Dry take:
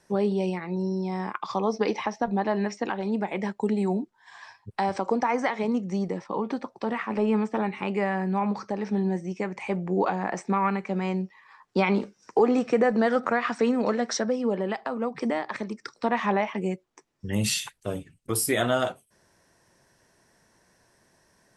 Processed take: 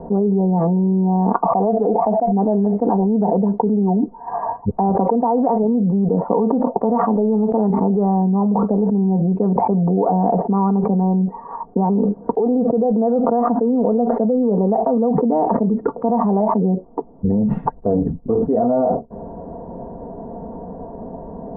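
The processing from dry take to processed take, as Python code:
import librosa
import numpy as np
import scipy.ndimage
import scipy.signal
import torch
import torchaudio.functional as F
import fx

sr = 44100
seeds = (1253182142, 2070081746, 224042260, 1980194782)

y = fx.peak_eq(x, sr, hz=700.0, db=12.0, octaves=0.43, at=(1.45, 2.32))
y = fx.low_shelf(y, sr, hz=470.0, db=-5.5, at=(6.15, 7.7))
y = scipy.signal.sosfilt(scipy.signal.butter(6, 830.0, 'lowpass', fs=sr, output='sos'), y)
y = y + 0.72 * np.pad(y, (int(4.3 * sr / 1000.0), 0))[:len(y)]
y = fx.env_flatten(y, sr, amount_pct=100)
y = y * librosa.db_to_amplitude(-6.5)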